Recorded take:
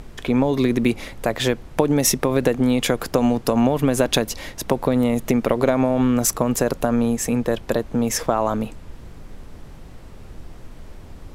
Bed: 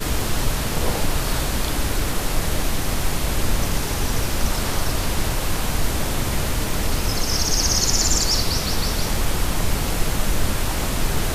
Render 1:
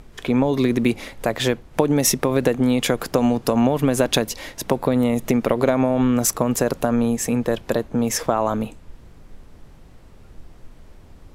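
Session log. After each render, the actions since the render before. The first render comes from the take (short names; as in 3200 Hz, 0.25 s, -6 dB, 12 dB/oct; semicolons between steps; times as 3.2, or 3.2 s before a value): noise print and reduce 6 dB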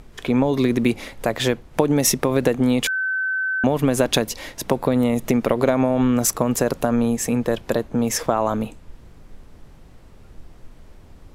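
2.87–3.64 bleep 1530 Hz -20 dBFS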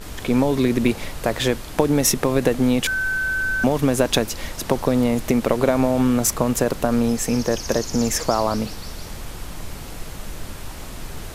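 add bed -12 dB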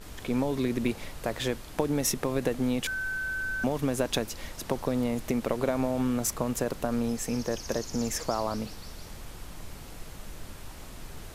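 gain -9.5 dB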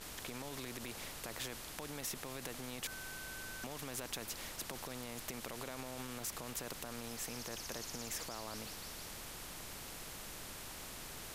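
limiter -22 dBFS, peak gain reduction 10.5 dB; spectral compressor 2:1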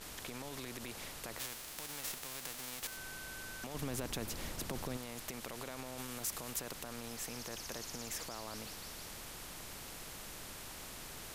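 1.38–2.96 spectral whitening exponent 0.3; 3.74–4.97 low shelf 470 Hz +10 dB; 5.98–6.6 high shelf 5700 Hz +5 dB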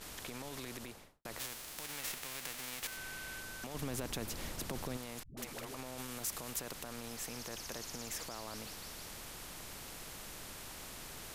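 0.74–1.25 studio fade out; 1.84–3.4 bell 2200 Hz +4 dB 1.2 oct; 5.23–5.75 dispersion highs, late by 0.142 s, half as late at 320 Hz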